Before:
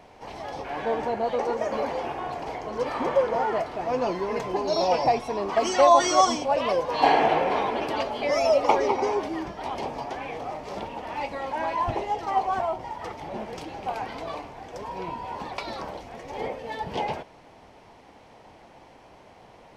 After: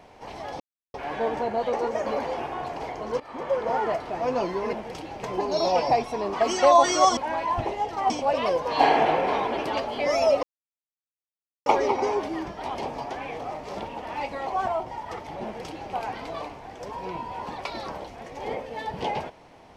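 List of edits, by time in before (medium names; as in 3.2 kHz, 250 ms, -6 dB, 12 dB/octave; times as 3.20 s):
0.60 s: insert silence 0.34 s
2.86–3.41 s: fade in, from -19.5 dB
8.66 s: insert silence 1.23 s
11.47–12.40 s: move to 6.33 s
13.36–13.86 s: copy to 4.39 s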